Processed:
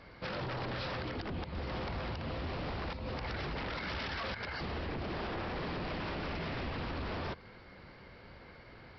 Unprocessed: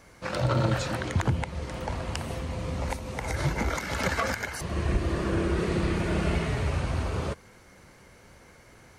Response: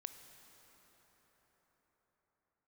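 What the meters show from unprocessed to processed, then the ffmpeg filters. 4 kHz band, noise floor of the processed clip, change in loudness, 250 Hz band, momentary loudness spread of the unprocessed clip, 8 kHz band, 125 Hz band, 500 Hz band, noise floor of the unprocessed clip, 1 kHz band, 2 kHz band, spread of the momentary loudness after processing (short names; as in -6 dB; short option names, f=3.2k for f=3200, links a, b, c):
-4.5 dB, -54 dBFS, -9.5 dB, -10.0 dB, 7 LU, under -25 dB, -12.5 dB, -9.0 dB, -54 dBFS, -6.5 dB, -7.0 dB, 16 LU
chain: -af "alimiter=limit=-23.5dB:level=0:latency=1:release=172,aresample=11025,aeval=exprs='0.0224*(abs(mod(val(0)/0.0224+3,4)-2)-1)':c=same,aresample=44100"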